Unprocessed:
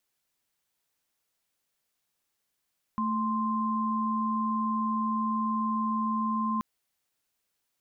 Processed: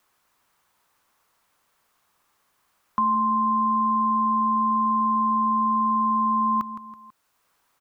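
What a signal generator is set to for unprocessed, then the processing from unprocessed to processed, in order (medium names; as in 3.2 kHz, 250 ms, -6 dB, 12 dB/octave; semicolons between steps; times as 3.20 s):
chord A3/C6 sine, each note -28.5 dBFS 3.63 s
peaking EQ 1.1 kHz +10.5 dB 0.94 oct; feedback delay 164 ms, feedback 35%, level -13 dB; three bands compressed up and down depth 40%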